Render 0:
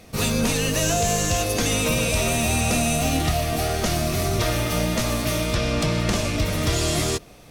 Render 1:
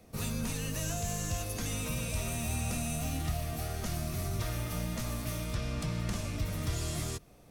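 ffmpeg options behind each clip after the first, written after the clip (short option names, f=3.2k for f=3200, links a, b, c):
-filter_complex "[0:a]equalizer=f=3.3k:w=0.44:g=-7.5,acrossover=split=220|920|5700[a][b][c][d];[b]acompressor=threshold=-37dB:ratio=6[e];[a][e][c][d]amix=inputs=4:normalize=0,volume=-9dB"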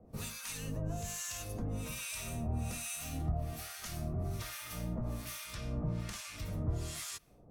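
-filter_complex "[0:a]acrossover=split=1000[a][b];[a]aeval=exprs='val(0)*(1-1/2+1/2*cos(2*PI*1.2*n/s))':c=same[c];[b]aeval=exprs='val(0)*(1-1/2-1/2*cos(2*PI*1.2*n/s))':c=same[d];[c][d]amix=inputs=2:normalize=0"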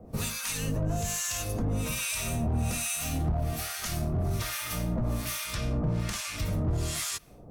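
-filter_complex "[0:a]asplit=2[a][b];[b]alimiter=level_in=8.5dB:limit=-24dB:level=0:latency=1:release=158,volume=-8.5dB,volume=-1.5dB[c];[a][c]amix=inputs=2:normalize=0,asoftclip=type=hard:threshold=-28dB,volume=5dB"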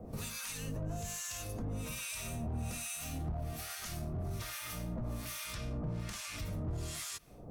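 -af "alimiter=level_in=9.5dB:limit=-24dB:level=0:latency=1:release=378,volume=-9.5dB,volume=1dB"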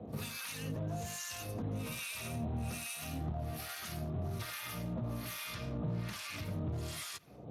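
-af "volume=1.5dB" -ar 32000 -c:a libspeex -b:a 28k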